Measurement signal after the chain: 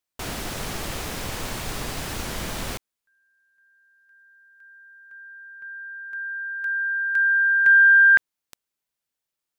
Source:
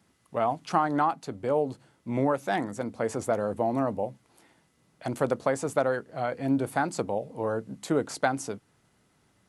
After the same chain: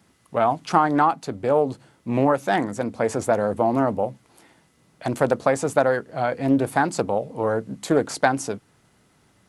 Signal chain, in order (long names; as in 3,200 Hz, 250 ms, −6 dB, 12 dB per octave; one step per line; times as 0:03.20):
highs frequency-modulated by the lows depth 0.24 ms
level +6.5 dB